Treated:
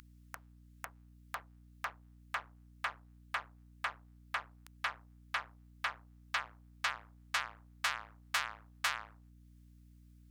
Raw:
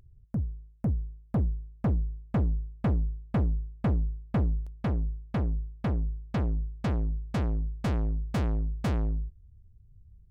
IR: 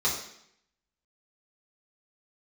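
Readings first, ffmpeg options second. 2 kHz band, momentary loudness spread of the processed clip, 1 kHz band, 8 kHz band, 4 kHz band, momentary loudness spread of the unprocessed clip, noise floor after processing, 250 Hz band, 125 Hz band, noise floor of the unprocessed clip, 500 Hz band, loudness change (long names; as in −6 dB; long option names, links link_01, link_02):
+9.0 dB, 18 LU, +1.5 dB, can't be measured, +9.5 dB, 4 LU, −60 dBFS, −30.5 dB, −30.0 dB, −57 dBFS, −17.5 dB, −9.0 dB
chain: -af "acompressor=threshold=-46dB:ratio=1.5,highpass=frequency=1200:width=0.5412,highpass=frequency=1200:width=1.3066,aeval=exprs='val(0)+0.0002*(sin(2*PI*60*n/s)+sin(2*PI*2*60*n/s)/2+sin(2*PI*3*60*n/s)/3+sin(2*PI*4*60*n/s)/4+sin(2*PI*5*60*n/s)/5)':channel_layout=same,volume=16dB"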